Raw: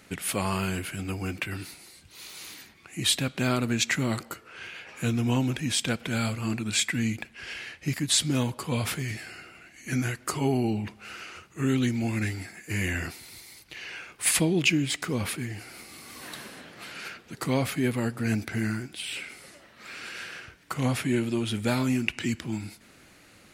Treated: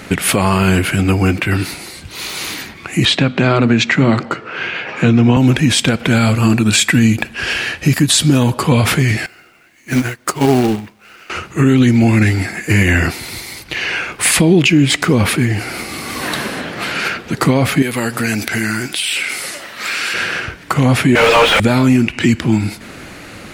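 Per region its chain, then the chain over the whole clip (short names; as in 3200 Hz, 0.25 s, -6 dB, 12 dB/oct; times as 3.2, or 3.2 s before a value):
3.05–5.37 HPF 110 Hz 24 dB/oct + air absorption 130 m + notches 50/100/150/200/250 Hz
6.35–8.59 high shelf 8800 Hz +7.5 dB + notch 2100 Hz, Q 9.9
9.26–11.3 low shelf 140 Hz -8 dB + companded quantiser 4-bit + upward expander 2.5:1, over -38 dBFS
17.82–20.14 tilt +3 dB/oct + compressor 2.5:1, threshold -36 dBFS
21.15–21.6 Chebyshev high-pass 460 Hz, order 10 + overdrive pedal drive 40 dB, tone 1700 Hz, clips at -16.5 dBFS
whole clip: high shelf 3800 Hz -7.5 dB; compressor 1.5:1, threshold -38 dBFS; maximiser +23.5 dB; gain -1 dB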